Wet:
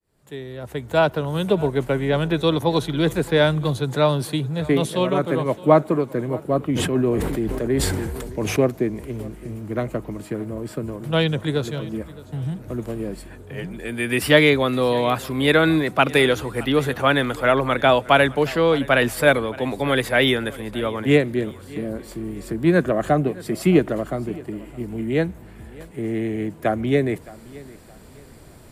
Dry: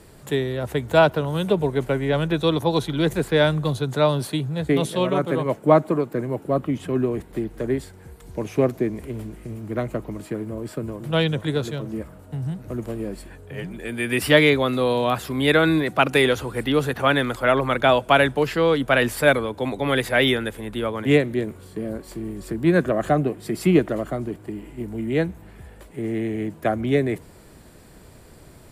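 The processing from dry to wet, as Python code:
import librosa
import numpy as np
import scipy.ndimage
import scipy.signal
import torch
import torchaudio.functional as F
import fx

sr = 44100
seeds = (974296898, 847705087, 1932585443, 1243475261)

y = fx.fade_in_head(x, sr, length_s=1.46)
y = fx.echo_feedback(y, sr, ms=616, feedback_pct=34, wet_db=-20.5)
y = fx.sustainer(y, sr, db_per_s=26.0, at=(6.74, 8.58), fade=0.02)
y = y * 10.0 ** (1.0 / 20.0)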